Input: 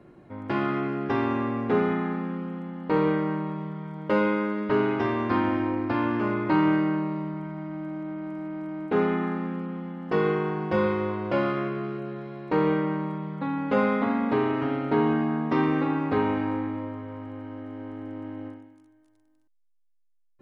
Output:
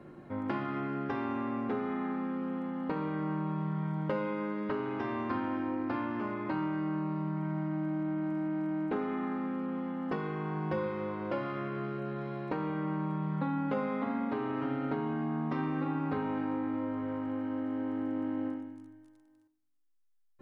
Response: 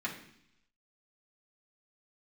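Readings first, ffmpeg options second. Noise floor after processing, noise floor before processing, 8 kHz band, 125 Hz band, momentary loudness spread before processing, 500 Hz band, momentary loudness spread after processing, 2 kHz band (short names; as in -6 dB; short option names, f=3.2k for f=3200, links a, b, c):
-64 dBFS, -64 dBFS, n/a, -5.0 dB, 13 LU, -10.0 dB, 3 LU, -9.5 dB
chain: -filter_complex "[0:a]acompressor=threshold=-33dB:ratio=6,asplit=2[a][b];[1:a]atrim=start_sample=2205,asetrate=32193,aresample=44100,lowpass=2.6k[c];[b][c]afir=irnorm=-1:irlink=0,volume=-12dB[d];[a][d]amix=inputs=2:normalize=0"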